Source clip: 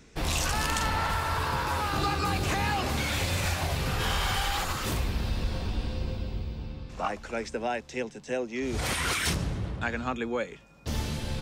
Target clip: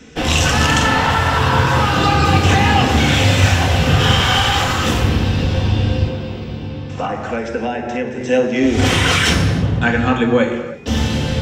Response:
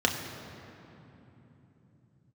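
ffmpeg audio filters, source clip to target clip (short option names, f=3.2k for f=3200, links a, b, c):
-filter_complex "[1:a]atrim=start_sample=2205,afade=t=out:st=0.38:d=0.01,atrim=end_sample=17199[a];[0:a][a]afir=irnorm=-1:irlink=0,asettb=1/sr,asplit=3[b][c][d];[b]atrim=end=6.074[e];[c]atrim=start=6.07:end=8.21,asetpts=PTS-STARTPTS,afade=t=in:d=0.004:c=qsin,afade=t=out:st=2.136:d=0.004:c=qsin,acrossover=split=150|590|2200[f][g][h][i];[f]acompressor=threshold=-33dB:ratio=4[j];[g]acompressor=threshold=-25dB:ratio=4[k];[h]acompressor=threshold=-27dB:ratio=4[l];[i]acompressor=threshold=-42dB:ratio=4[m];[j][k][l][m]amix=inputs=4:normalize=0[n];[d]atrim=start=8.206[o];[e][n]acrossfade=d=0.004:c1=hsin:c2=qsin[p];[p][o]acrossfade=d=0.004:c1=qsin:c2=hsin,volume=2dB"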